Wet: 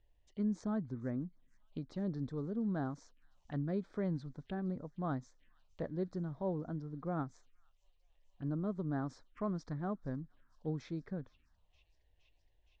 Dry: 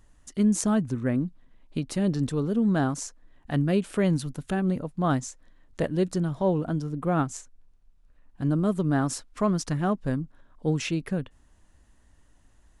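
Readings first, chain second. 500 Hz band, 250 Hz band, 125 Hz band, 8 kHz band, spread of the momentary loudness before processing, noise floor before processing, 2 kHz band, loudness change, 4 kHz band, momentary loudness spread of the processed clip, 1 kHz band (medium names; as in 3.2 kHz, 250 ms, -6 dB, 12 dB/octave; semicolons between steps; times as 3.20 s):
-13.0 dB, -12.5 dB, -12.5 dB, under -25 dB, 8 LU, -60 dBFS, -16.5 dB, -13.0 dB, under -20 dB, 8 LU, -13.5 dB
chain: four-pole ladder low-pass 4.2 kHz, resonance 25%; feedback echo behind a high-pass 467 ms, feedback 81%, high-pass 2.6 kHz, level -22 dB; touch-sensitive phaser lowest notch 190 Hz, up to 2.8 kHz, full sweep at -35 dBFS; trim -6.5 dB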